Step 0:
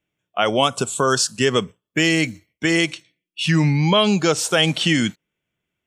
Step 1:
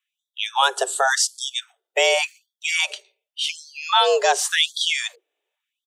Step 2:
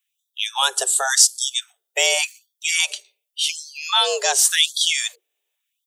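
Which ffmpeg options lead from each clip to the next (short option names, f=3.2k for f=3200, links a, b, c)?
-filter_complex "[0:a]afreqshift=270,acrossover=split=210[a][b];[a]adelay=80[c];[c][b]amix=inputs=2:normalize=0,afftfilt=real='re*gte(b*sr/1024,240*pow(3300/240,0.5+0.5*sin(2*PI*0.89*pts/sr)))':imag='im*gte(b*sr/1024,240*pow(3300/240,0.5+0.5*sin(2*PI*0.89*pts/sr)))':win_size=1024:overlap=0.75"
-af "crystalizer=i=5:c=0,volume=-6.5dB"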